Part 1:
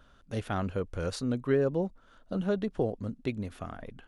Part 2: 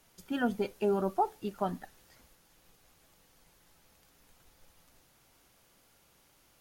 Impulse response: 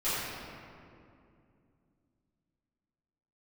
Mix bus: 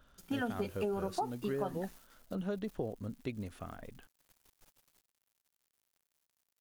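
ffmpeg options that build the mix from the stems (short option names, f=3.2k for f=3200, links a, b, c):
-filter_complex "[0:a]volume=-5.5dB,asplit=2[a][b];[1:a]bandreject=f=60:t=h:w=6,bandreject=f=120:t=h:w=6,bandreject=f=180:t=h:w=6,bandreject=f=240:t=h:w=6,bandreject=f=300:t=h:w=6,bandreject=f=360:t=h:w=6,aeval=exprs='val(0)*gte(abs(val(0)),0.0015)':c=same,volume=2.5dB[c];[b]apad=whole_len=291479[d];[c][d]sidechaingate=range=-7dB:threshold=-59dB:ratio=16:detection=peak[e];[a][e]amix=inputs=2:normalize=0,highshelf=f=7.6k:g=4,acompressor=threshold=-32dB:ratio=5"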